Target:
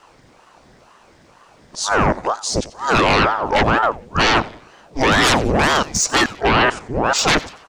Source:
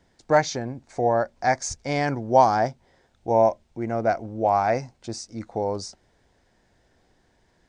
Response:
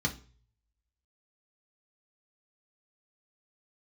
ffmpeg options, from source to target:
-filter_complex "[0:a]areverse,aeval=exprs='0.631*sin(PI/2*7.08*val(0)/0.631)':channel_layout=same,asplit=2[link_01][link_02];[link_02]aecho=0:1:91|182|273:0.119|0.0499|0.021[link_03];[link_01][link_03]amix=inputs=2:normalize=0,aeval=exprs='val(0)*sin(2*PI*620*n/s+620*0.8/2.1*sin(2*PI*2.1*n/s))':channel_layout=same,volume=-4dB"

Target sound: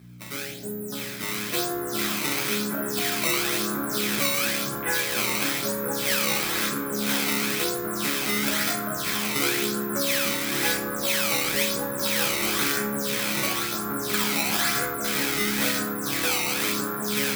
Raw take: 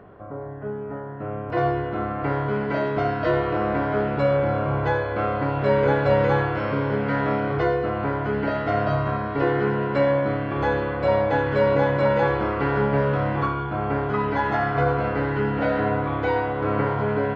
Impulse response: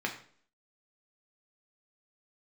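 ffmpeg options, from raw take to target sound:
-filter_complex "[0:a]acompressor=threshold=-23dB:ratio=4,afwtdn=0.0282,equalizer=frequency=770:width=1.5:gain=-5,acrusher=samples=15:mix=1:aa=0.000001:lfo=1:lforange=24:lforate=0.99,tiltshelf=frequency=1200:gain=-4.5,aeval=exprs='val(0)+0.00708*(sin(2*PI*60*n/s)+sin(2*PI*2*60*n/s)/2+sin(2*PI*3*60*n/s)/3+sin(2*PI*4*60*n/s)/4+sin(2*PI*5*60*n/s)/5)':channel_layout=same,crystalizer=i=5.5:c=0[link_01];[1:a]atrim=start_sample=2205[link_02];[link_01][link_02]afir=irnorm=-1:irlink=0,volume=-5dB"

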